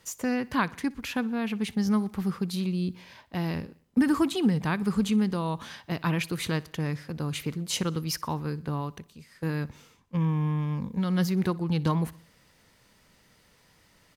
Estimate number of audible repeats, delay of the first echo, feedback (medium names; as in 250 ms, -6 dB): 3, 61 ms, 57%